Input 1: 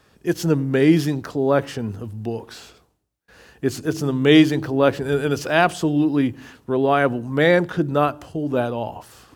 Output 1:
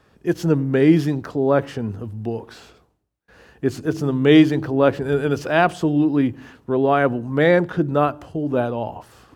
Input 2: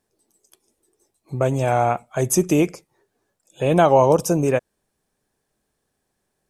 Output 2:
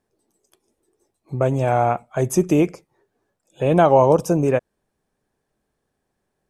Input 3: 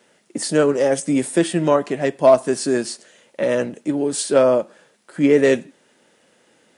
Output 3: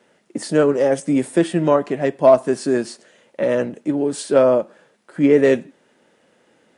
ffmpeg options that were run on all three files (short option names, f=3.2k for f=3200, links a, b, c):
-af "highshelf=f=3.1k:g=-9,volume=1dB"